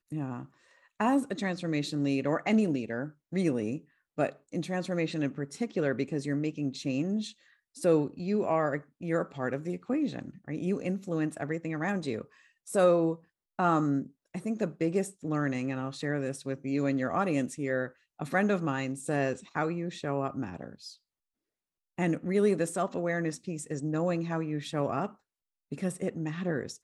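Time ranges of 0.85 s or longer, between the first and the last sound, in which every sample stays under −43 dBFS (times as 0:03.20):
0:20.93–0:21.98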